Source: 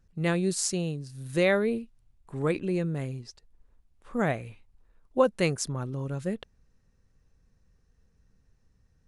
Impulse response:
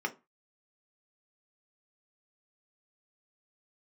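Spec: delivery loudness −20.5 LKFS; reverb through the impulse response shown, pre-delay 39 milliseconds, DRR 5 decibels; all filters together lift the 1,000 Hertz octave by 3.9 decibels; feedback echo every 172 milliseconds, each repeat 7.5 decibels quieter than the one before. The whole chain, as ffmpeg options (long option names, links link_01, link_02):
-filter_complex "[0:a]equalizer=frequency=1000:width_type=o:gain=5,aecho=1:1:172|344|516|688|860:0.422|0.177|0.0744|0.0312|0.0131,asplit=2[link_01][link_02];[1:a]atrim=start_sample=2205,adelay=39[link_03];[link_02][link_03]afir=irnorm=-1:irlink=0,volume=-10.5dB[link_04];[link_01][link_04]amix=inputs=2:normalize=0,volume=6.5dB"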